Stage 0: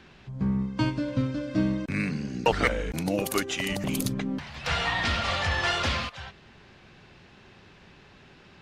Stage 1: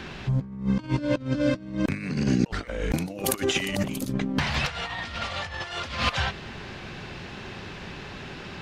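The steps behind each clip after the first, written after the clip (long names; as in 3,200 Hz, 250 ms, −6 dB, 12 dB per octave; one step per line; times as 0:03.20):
compressor whose output falls as the input rises −34 dBFS, ratio −0.5
level +7.5 dB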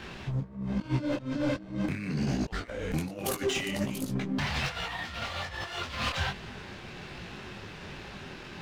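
leveller curve on the samples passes 1
soft clipping −17 dBFS, distortion −13 dB
micro pitch shift up and down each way 43 cents
level −2.5 dB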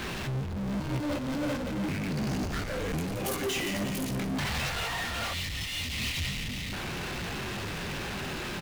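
echo with shifted repeats 172 ms, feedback 52%, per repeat −46 Hz, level −11 dB
gain on a spectral selection 0:05.34–0:06.73, 310–1,800 Hz −28 dB
power curve on the samples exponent 0.35
level −7.5 dB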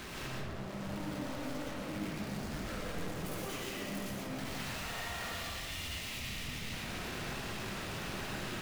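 hard clipping −38.5 dBFS, distortion −9 dB
comb and all-pass reverb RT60 1.6 s, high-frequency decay 0.45×, pre-delay 75 ms, DRR −4 dB
level −6.5 dB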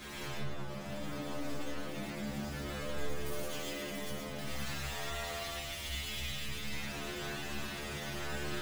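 stiff-string resonator 70 Hz, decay 0.61 s, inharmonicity 0.002
level +11 dB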